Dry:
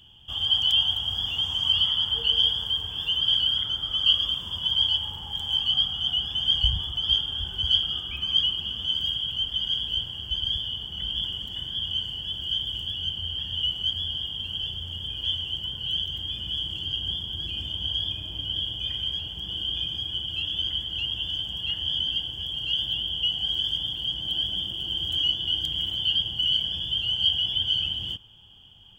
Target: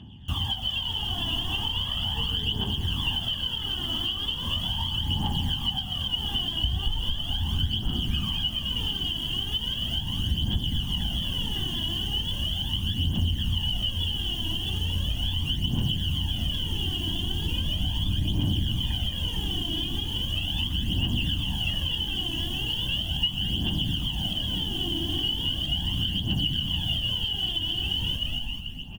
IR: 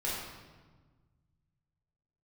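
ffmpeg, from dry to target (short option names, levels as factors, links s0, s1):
-filter_complex "[0:a]lowpass=f=1600:p=1,equalizer=f=84:t=o:w=0.26:g=2,asplit=2[s0][s1];[s1]acrusher=bits=6:mix=0:aa=0.000001,volume=0.447[s2];[s0][s2]amix=inputs=2:normalize=0,highpass=56,asplit=8[s3][s4][s5][s6][s7][s8][s9][s10];[s4]adelay=218,afreqshift=-35,volume=0.562[s11];[s5]adelay=436,afreqshift=-70,volume=0.309[s12];[s6]adelay=654,afreqshift=-105,volume=0.17[s13];[s7]adelay=872,afreqshift=-140,volume=0.0933[s14];[s8]adelay=1090,afreqshift=-175,volume=0.0513[s15];[s9]adelay=1308,afreqshift=-210,volume=0.0282[s16];[s10]adelay=1526,afreqshift=-245,volume=0.0155[s17];[s3][s11][s12][s13][s14][s15][s16][s17]amix=inputs=8:normalize=0,aphaser=in_gain=1:out_gain=1:delay=3.1:decay=0.57:speed=0.38:type=triangular,acompressor=threshold=0.0398:ratio=6,equalizer=f=240:t=o:w=1.3:g=12.5,aecho=1:1:1.1:0.42,volume=1.41"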